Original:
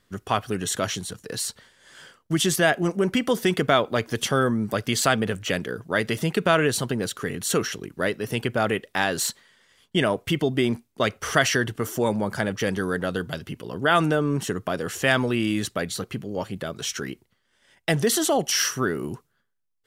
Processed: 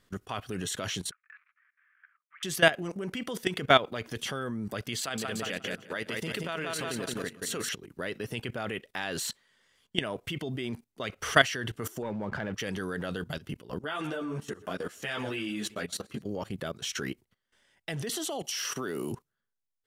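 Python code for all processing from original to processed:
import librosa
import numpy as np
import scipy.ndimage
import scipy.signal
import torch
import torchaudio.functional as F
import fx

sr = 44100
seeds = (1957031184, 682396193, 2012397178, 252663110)

y = fx.chain(x, sr, fx.dead_time(dead_ms=0.08),
    fx.ellip_bandpass(low_hz=1200.0, high_hz=2400.0, order=3, stop_db=60),
    fx.transient(attack_db=-3, sustain_db=-7), at=(1.11, 2.43))
y = fx.chain(y, sr, fx.level_steps(step_db=9),
    fx.low_shelf(hz=170.0, db=-7.5),
    fx.echo_feedback(ms=177, feedback_pct=44, wet_db=-5), at=(5.0, 7.69))
y = fx.chain(y, sr, fx.lowpass(hz=2200.0, slope=12),
    fx.leveller(passes=1), at=(12.02, 12.54))
y = fx.chain(y, sr, fx.low_shelf(hz=82.0, db=-11.5),
    fx.echo_feedback(ms=124, feedback_pct=55, wet_db=-21.0),
    fx.ensemble(), at=(13.79, 16.22))
y = fx.chain(y, sr, fx.highpass(hz=270.0, slope=6),
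    fx.peak_eq(hz=1700.0, db=-6.5, octaves=0.89),
    fx.band_squash(depth_pct=70), at=(18.09, 19.12))
y = fx.dynamic_eq(y, sr, hz=2800.0, q=1.1, threshold_db=-38.0, ratio=4.0, max_db=5)
y = fx.level_steps(y, sr, step_db=17)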